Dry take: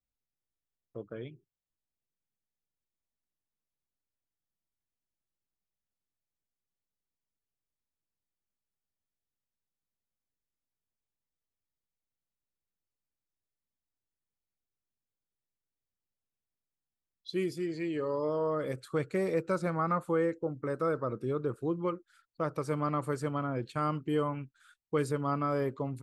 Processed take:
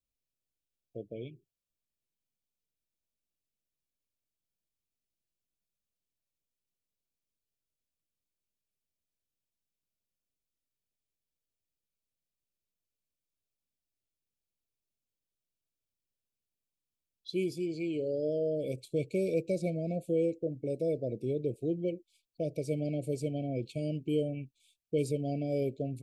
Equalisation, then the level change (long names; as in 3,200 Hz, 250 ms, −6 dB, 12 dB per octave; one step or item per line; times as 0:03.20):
linear-phase brick-wall band-stop 720–2,200 Hz
0.0 dB